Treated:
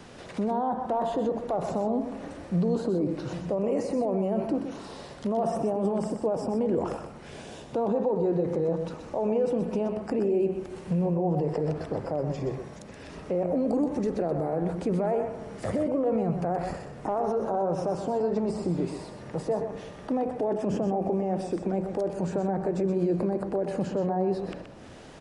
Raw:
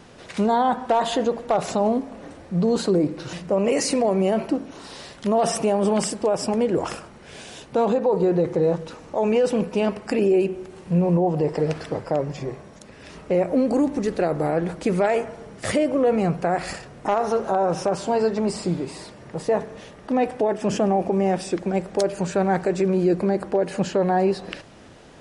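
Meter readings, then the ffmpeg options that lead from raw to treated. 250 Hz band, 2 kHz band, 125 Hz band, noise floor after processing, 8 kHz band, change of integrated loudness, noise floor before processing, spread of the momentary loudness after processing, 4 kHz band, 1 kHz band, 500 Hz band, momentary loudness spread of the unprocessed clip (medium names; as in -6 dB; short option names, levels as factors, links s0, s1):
-5.0 dB, -12.5 dB, -4.0 dB, -44 dBFS, under -15 dB, -6.0 dB, -45 dBFS, 10 LU, under -10 dB, -7.0 dB, -6.0 dB, 13 LU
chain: -filter_complex "[0:a]acrossover=split=150|1100[s0][s1][s2];[s2]acompressor=threshold=0.00355:ratio=6[s3];[s0][s1][s3]amix=inputs=3:normalize=0,alimiter=limit=0.106:level=0:latency=1:release=65,aecho=1:1:125:0.398"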